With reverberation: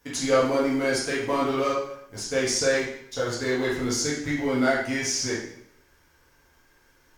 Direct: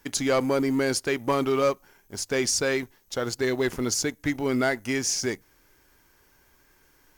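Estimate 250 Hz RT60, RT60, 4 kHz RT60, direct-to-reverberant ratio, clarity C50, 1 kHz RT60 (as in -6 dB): 0.70 s, 0.70 s, 0.65 s, -8.0 dB, 2.5 dB, 0.70 s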